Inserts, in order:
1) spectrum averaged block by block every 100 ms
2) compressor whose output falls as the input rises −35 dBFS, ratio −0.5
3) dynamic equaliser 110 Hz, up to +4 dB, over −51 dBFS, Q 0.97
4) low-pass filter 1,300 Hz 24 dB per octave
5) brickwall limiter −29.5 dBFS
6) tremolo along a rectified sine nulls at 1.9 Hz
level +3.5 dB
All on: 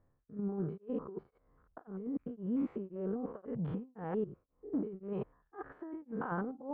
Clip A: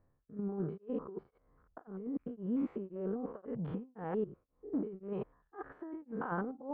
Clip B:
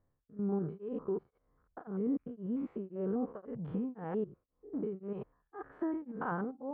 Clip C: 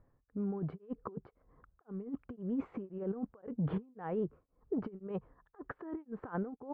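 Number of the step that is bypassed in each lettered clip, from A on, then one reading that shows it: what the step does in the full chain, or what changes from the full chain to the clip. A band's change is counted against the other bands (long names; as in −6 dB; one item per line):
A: 3, 125 Hz band −2.0 dB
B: 2, change in momentary loudness spread +3 LU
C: 1, 125 Hz band +3.0 dB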